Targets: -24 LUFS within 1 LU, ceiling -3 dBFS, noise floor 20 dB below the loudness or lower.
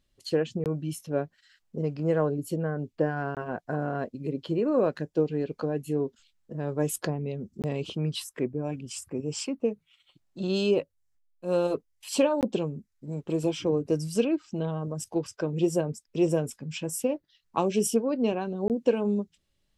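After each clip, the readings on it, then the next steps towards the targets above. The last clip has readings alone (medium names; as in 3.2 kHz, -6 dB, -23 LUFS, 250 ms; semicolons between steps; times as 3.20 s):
dropouts 5; longest dropout 18 ms; loudness -29.5 LUFS; peak level -10.0 dBFS; loudness target -24.0 LUFS
-> interpolate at 0.64/3.35/7.62/12.41/18.68 s, 18 ms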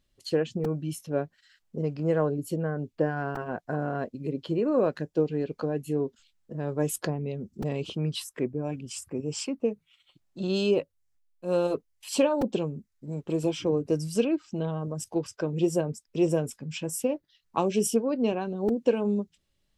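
dropouts 0; loudness -29.5 LUFS; peak level -10.0 dBFS; loudness target -24.0 LUFS
-> trim +5.5 dB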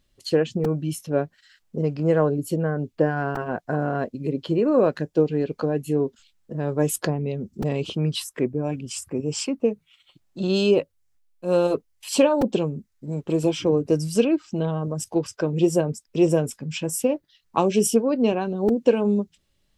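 loudness -24.0 LUFS; peak level -4.5 dBFS; noise floor -69 dBFS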